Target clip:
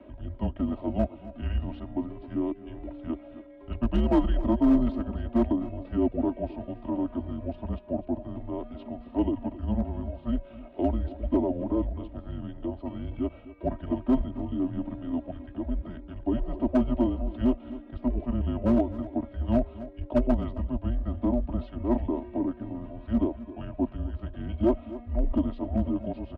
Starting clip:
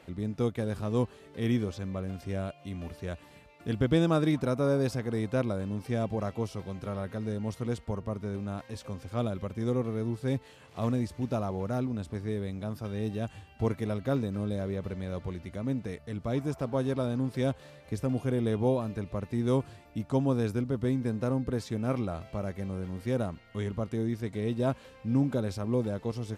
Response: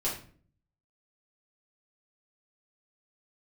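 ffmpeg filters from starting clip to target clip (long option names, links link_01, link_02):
-filter_complex "[0:a]equalizer=frequency=930:width_type=o:width=0.46:gain=12.5,highpass=frequency=220:width_type=q:width=0.5412,highpass=frequency=220:width_type=q:width=1.307,lowpass=frequency=3600:width_type=q:width=0.5176,lowpass=frequency=3600:width_type=q:width=0.7071,lowpass=frequency=3600:width_type=q:width=1.932,afreqshift=-290,equalizer=frequency=125:width_type=o:width=1:gain=-3,equalizer=frequency=250:width_type=o:width=1:gain=8,equalizer=frequency=2000:width_type=o:width=1:gain=-10,afreqshift=22,asoftclip=type=hard:threshold=-18.5dB,aecho=1:1:2.9:0.67,asplit=2[link_01][link_02];[link_02]aecho=0:1:261:0.158[link_03];[link_01][link_03]amix=inputs=2:normalize=0,asetrate=40440,aresample=44100,atempo=1.09051"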